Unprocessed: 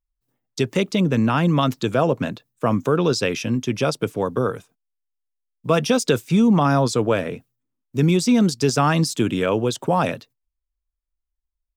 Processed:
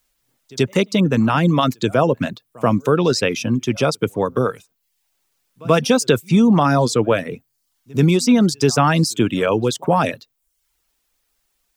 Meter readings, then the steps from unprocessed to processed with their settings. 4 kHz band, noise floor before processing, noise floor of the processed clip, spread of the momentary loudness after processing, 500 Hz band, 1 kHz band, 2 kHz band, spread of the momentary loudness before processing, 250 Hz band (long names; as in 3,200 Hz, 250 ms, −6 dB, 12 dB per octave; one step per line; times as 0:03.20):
+3.0 dB, −82 dBFS, −71 dBFS, 9 LU, +3.0 dB, +3.0 dB, +3.0 dB, 9 LU, +2.5 dB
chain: echo ahead of the sound 84 ms −24 dB
bit-depth reduction 12 bits, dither triangular
reverb reduction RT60 0.54 s
level +3.5 dB